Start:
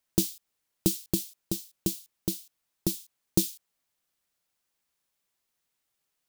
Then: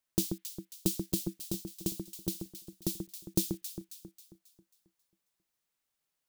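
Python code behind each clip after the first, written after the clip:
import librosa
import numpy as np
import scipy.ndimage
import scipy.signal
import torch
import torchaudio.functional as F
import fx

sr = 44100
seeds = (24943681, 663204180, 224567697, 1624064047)

y = fx.echo_alternate(x, sr, ms=135, hz=1700.0, feedback_pct=66, wet_db=-5.5)
y = F.gain(torch.from_numpy(y), -5.0).numpy()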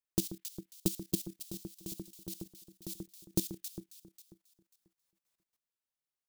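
y = fx.level_steps(x, sr, step_db=14)
y = F.gain(torch.from_numpy(y), 1.5).numpy()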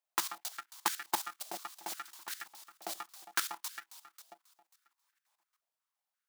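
y = fx.halfwave_hold(x, sr)
y = fx.filter_held_highpass(y, sr, hz=5.7, low_hz=680.0, high_hz=1600.0)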